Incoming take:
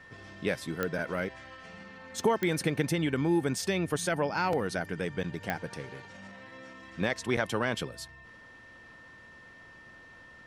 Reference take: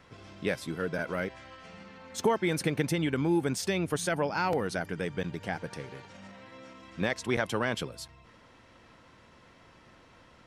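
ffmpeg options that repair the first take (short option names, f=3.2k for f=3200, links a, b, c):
-af "adeclick=t=4,bandreject=f=1.8k:w=30"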